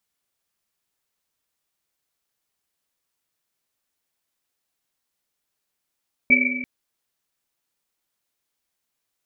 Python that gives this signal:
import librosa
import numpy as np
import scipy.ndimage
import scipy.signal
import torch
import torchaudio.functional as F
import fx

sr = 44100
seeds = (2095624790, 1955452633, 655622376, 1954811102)

y = fx.risset_drum(sr, seeds[0], length_s=0.34, hz=250.0, decay_s=1.97, noise_hz=2300.0, noise_width_hz=100.0, noise_pct=65)